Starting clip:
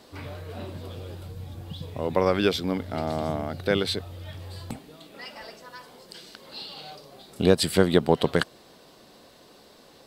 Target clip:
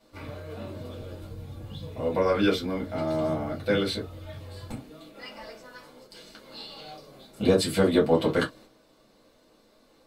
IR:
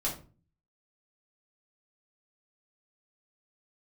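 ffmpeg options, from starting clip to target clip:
-filter_complex "[0:a]agate=range=-7dB:threshold=-49dB:ratio=16:detection=peak[link_01];[1:a]atrim=start_sample=2205,afade=type=out:start_time=0.2:duration=0.01,atrim=end_sample=9261,asetrate=83790,aresample=44100[link_02];[link_01][link_02]afir=irnorm=-1:irlink=0,volume=-2dB"

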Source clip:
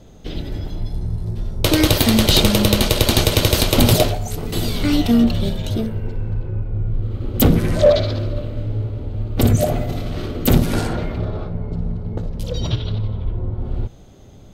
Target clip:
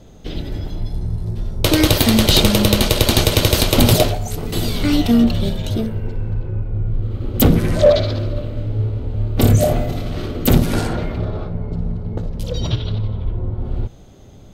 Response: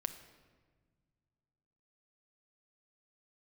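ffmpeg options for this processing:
-filter_complex "[0:a]asettb=1/sr,asplit=3[link_01][link_02][link_03];[link_01]atrim=end=8.764[link_04];[link_02]atrim=start=8.76:end=9.89,asetpts=PTS-STARTPTS,afade=type=in:duration=0.004:curve=qsin,afade=type=out:start_time=1.126:duration=0.004:curve=qsin,asplit=2[link_05][link_06];[link_06]adelay=28,volume=-6dB[link_07];[link_05][link_07]amix=inputs=2:normalize=0,atrim=end_sample=49833[link_08];[link_03]atrim=start=9.886[link_09];[link_04][link_08]acrossfade=duration=0.004:curve1=hsin:curve2=qsin[link_10];[link_10][link_09]acrossfade=duration=0.004:curve1=qsin:curve2=hsin,volume=1dB"

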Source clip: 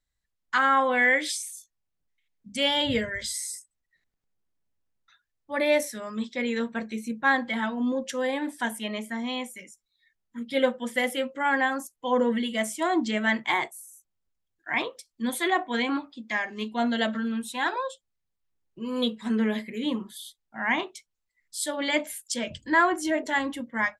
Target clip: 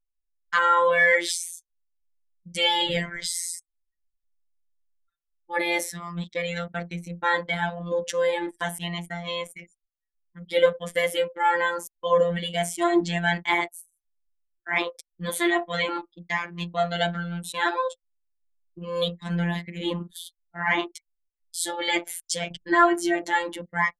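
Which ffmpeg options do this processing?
ffmpeg -i in.wav -af "afftfilt=real='hypot(re,im)*cos(PI*b)':imag='0':win_size=1024:overlap=0.75,anlmdn=0.0398,acontrast=54" out.wav

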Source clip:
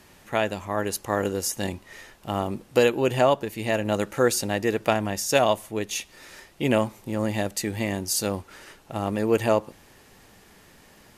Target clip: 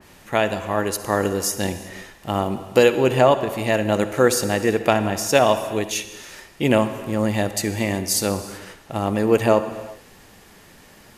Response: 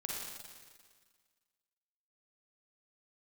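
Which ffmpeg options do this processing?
-filter_complex "[0:a]asplit=2[link_01][link_02];[1:a]atrim=start_sample=2205,afade=type=out:start_time=0.39:duration=0.01,atrim=end_sample=17640,asetrate=36603,aresample=44100[link_03];[link_02][link_03]afir=irnorm=-1:irlink=0,volume=-9.5dB[link_04];[link_01][link_04]amix=inputs=2:normalize=0,adynamicequalizer=threshold=0.0224:dfrequency=2600:dqfactor=0.7:tfrequency=2600:tqfactor=0.7:attack=5:release=100:ratio=0.375:range=2:mode=cutabove:tftype=highshelf,volume=2.5dB"

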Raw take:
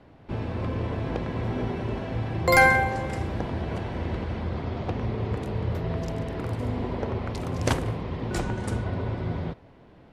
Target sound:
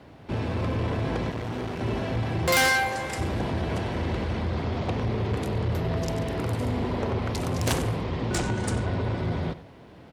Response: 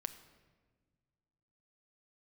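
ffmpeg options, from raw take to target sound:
-filter_complex "[0:a]asettb=1/sr,asplit=3[link_01][link_02][link_03];[link_01]atrim=end=2.684[link_04];[link_02]atrim=start=2.68:end=3.19,asetpts=PTS-STARTPTS,afade=type=in:duration=0.004:curve=qsin,afade=type=out:start_time=0.506:duration=0.004:curve=qsin,lowshelf=frequency=460:gain=-10.5[link_05];[link_03]atrim=start=3.186[link_06];[link_04][link_05]acrossfade=duration=0.004:curve1=hsin:curve2=qsin[link_07];[link_07][link_06]acrossfade=duration=0.004:curve1=qsin:curve2=hsin,asettb=1/sr,asplit=3[link_08][link_09][link_10];[link_08]atrim=end=8.074[link_11];[link_09]atrim=start=8.07:end=9.03,asetpts=PTS-STARTPTS,afade=type=in:duration=0.004:curve=qsin,afade=type=out:start_time=0.956:duration=0.004:curve=qsin,lowpass=frequency=9500:width=0.5412,lowpass=frequency=9500:width=1.3066[link_12];[link_10]atrim=start=9.026[link_13];[link_11][link_12]acrossfade=duration=0.004:curve1=hsin:curve2=qsin[link_14];[link_14][link_13]acrossfade=duration=0.004:curve1=qsin:curve2=hsin,asplit=2[link_15][link_16];[link_16]aecho=0:1:94:0.133[link_17];[link_15][link_17]amix=inputs=2:normalize=0,asoftclip=type=tanh:threshold=-24dB,highshelf=frequency=4100:gain=8.5,asettb=1/sr,asplit=3[link_18][link_19][link_20];[link_18]atrim=end=1.304[link_21];[link_19]atrim=start=1.3:end=1.81,asetpts=PTS-STARTPTS,afade=type=in:duration=0.004:curve=qsin,afade=type=out:start_time=0.506:duration=0.004:curve=qsin,aeval=exprs='max(val(0),0)':channel_layout=same[link_22];[link_20]atrim=start=1.806[link_23];[link_21][link_22]acrossfade=duration=0.004:curve1=hsin:curve2=qsin[link_24];[link_24][link_23]acrossfade=duration=0.004:curve1=qsin:curve2=hsin,highpass=50,volume=4dB"

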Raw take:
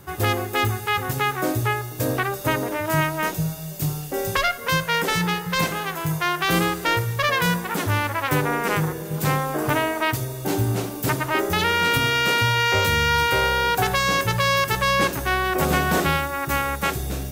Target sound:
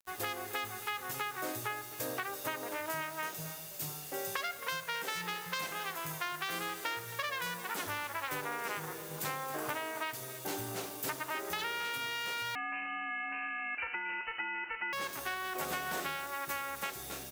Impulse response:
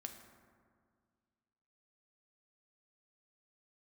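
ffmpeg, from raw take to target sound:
-filter_complex "[0:a]highpass=frequency=770:poles=1,acompressor=threshold=-25dB:ratio=6,acrusher=bits=6:mix=0:aa=0.000001,aecho=1:1:271:0.188,asettb=1/sr,asplit=3[link_01][link_02][link_03];[link_01]atrim=end=12.554[link_04];[link_02]atrim=start=12.55:end=14.93,asetpts=PTS-STARTPTS,afade=type=in:duration=0.004:curve=qsin,afade=type=out:start_time=2.376:duration=0.004:curve=qsin,lowpass=frequency=2600:width_type=q:width=0.5098,lowpass=frequency=2600:width_type=q:width=0.6013,lowpass=frequency=2600:width_type=q:width=0.9,lowpass=frequency=2600:width_type=q:width=2.563,afreqshift=-3100[link_05];[link_03]atrim=start=14.926[link_06];[link_04][link_05]acrossfade=duration=0.004:curve1=hsin:curve2=qsin[link_07];[link_07][link_06]acrossfade=duration=0.004:curve1=qsin:curve2=hsin,volume=-7.5dB"

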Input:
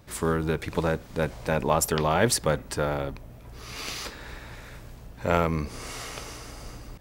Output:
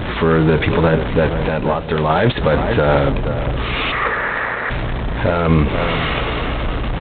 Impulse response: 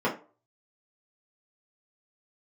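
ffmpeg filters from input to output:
-filter_complex "[0:a]aeval=exprs='val(0)+0.5*0.0282*sgn(val(0))':channel_layout=same,asplit=3[link_01][link_02][link_03];[link_01]afade=type=out:start_time=1.28:duration=0.02[link_04];[link_02]acompressor=threshold=-27dB:ratio=12,afade=type=in:start_time=1.28:duration=0.02,afade=type=out:start_time=2.09:duration=0.02[link_05];[link_03]afade=type=in:start_time=2.09:duration=0.02[link_06];[link_04][link_05][link_06]amix=inputs=3:normalize=0,aeval=exprs='val(0)+0.00251*(sin(2*PI*50*n/s)+sin(2*PI*2*50*n/s)/2+sin(2*PI*3*50*n/s)/3+sin(2*PI*4*50*n/s)/4+sin(2*PI*5*50*n/s)/5)':channel_layout=same,flanger=delay=2.9:depth=5.4:regen=-79:speed=0.76:shape=triangular,asplit=3[link_07][link_08][link_09];[link_07]afade=type=out:start_time=3.91:duration=0.02[link_10];[link_08]highpass=280,equalizer=frequency=300:width_type=q:width=4:gain=-8,equalizer=frequency=490:width_type=q:width=4:gain=3,equalizer=frequency=1200:width_type=q:width=4:gain=7,equalizer=frequency=1900:width_type=q:width=4:gain=8,lowpass=frequency=2100:width=0.5412,lowpass=frequency=2100:width=1.3066,afade=type=in:start_time=3.91:duration=0.02,afade=type=out:start_time=4.69:duration=0.02[link_11];[link_09]afade=type=in:start_time=4.69:duration=0.02[link_12];[link_10][link_11][link_12]amix=inputs=3:normalize=0,asplit=2[link_13][link_14];[link_14]adelay=472,lowpass=frequency=1100:poles=1,volume=-11.5dB,asplit=2[link_15][link_16];[link_16]adelay=472,lowpass=frequency=1100:poles=1,volume=0.32,asplit=2[link_17][link_18];[link_18]adelay=472,lowpass=frequency=1100:poles=1,volume=0.32[link_19];[link_15][link_17][link_19]amix=inputs=3:normalize=0[link_20];[link_13][link_20]amix=inputs=2:normalize=0,alimiter=level_in=19.5dB:limit=-1dB:release=50:level=0:latency=1,volume=-1.5dB" -ar 8000 -c:a adpcm_g726 -b:a 24k

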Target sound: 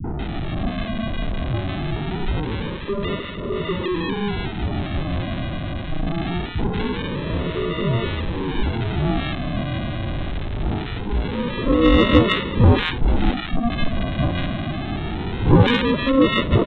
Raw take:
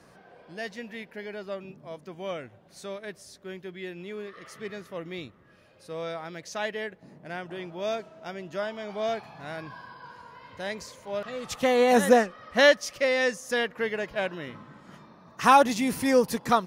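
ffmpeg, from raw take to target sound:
ffmpeg -i in.wav -filter_complex "[0:a]aeval=exprs='val(0)+0.5*0.0596*sgn(val(0))':channel_layout=same,aresample=8000,acrusher=samples=14:mix=1:aa=0.000001:lfo=1:lforange=8.4:lforate=0.23,aresample=44100,acrossover=split=200|1200[link_01][link_02][link_03];[link_02]adelay=40[link_04];[link_03]adelay=190[link_05];[link_01][link_04][link_05]amix=inputs=3:normalize=0,acontrast=51" out.wav

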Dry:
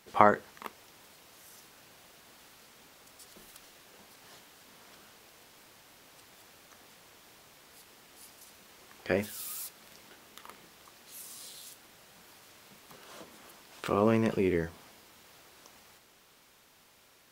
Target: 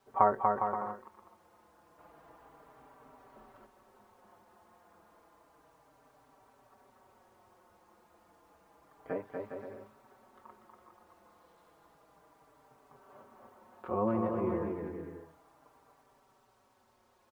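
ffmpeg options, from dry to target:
ffmpeg -i in.wav -filter_complex "[0:a]lowpass=frequency=1000:width_type=q:width=1.7,equalizer=frequency=170:width_type=o:width=0.26:gain=-5,asplit=2[link_01][link_02];[link_02]aecho=0:1:240|408|525.6|607.9|665.5:0.631|0.398|0.251|0.158|0.1[link_03];[link_01][link_03]amix=inputs=2:normalize=0,asettb=1/sr,asplit=3[link_04][link_05][link_06];[link_04]atrim=end=1.984[link_07];[link_05]atrim=start=1.98:end=3.66,asetpts=PTS-STARTPTS,afade=type=in:duration=0.004:curve=qsin,afade=type=out:start_time=1.676:duration=0.004:curve=qsin,acontrast=47[link_08];[link_06]atrim=start=3.656[link_09];[link_07][link_08]acrossfade=duration=0.004:curve1=hsin:curve2=qsin[link_10];[link_10][link_09]acrossfade=duration=0.004:curve1=qsin:curve2=hsin,acrusher=bits=10:mix=0:aa=0.000001,asplit=2[link_11][link_12];[link_12]adelay=4.7,afreqshift=-0.31[link_13];[link_11][link_13]amix=inputs=2:normalize=1,volume=-4dB" out.wav

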